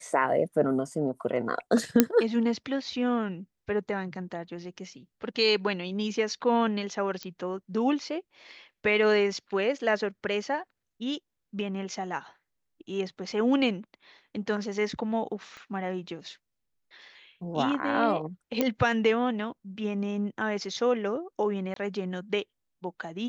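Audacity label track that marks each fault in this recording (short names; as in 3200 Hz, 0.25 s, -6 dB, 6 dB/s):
2.000000	2.000000	pop -3 dBFS
7.230000	7.230000	pop -21 dBFS
15.570000	15.570000	pop -32 dBFS
18.610000	18.610000	pop -11 dBFS
21.740000	21.760000	gap 23 ms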